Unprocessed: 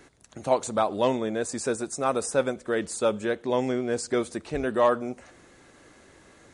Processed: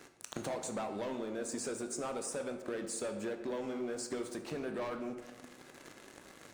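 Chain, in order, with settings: high-pass 140 Hz 12 dB/octave; waveshaping leveller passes 3; compression 10:1, threshold -38 dBFS, peak gain reduction 24 dB; on a send: reverberation RT60 1.4 s, pre-delay 16 ms, DRR 6 dB

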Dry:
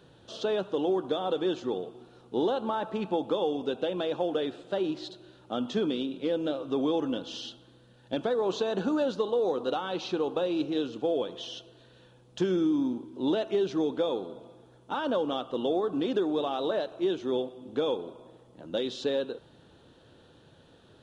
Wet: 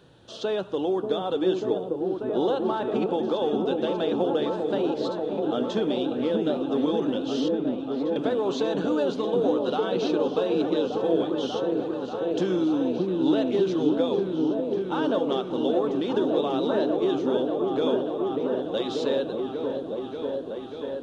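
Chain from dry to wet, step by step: 7.48–8.16 s: slow attack 771 ms; delay with an opening low-pass 589 ms, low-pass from 400 Hz, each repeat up 1 oct, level 0 dB; trim +1.5 dB

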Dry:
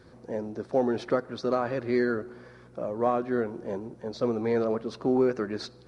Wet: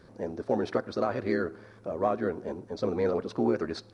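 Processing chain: granular stretch 0.67×, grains 27 ms

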